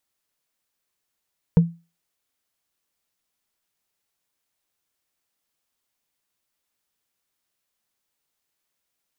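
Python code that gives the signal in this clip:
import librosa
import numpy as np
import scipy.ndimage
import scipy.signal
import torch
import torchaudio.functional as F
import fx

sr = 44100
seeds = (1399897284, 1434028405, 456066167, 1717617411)

y = fx.strike_wood(sr, length_s=0.45, level_db=-7.0, body='bar', hz=168.0, decay_s=0.29, tilt_db=11.0, modes=5)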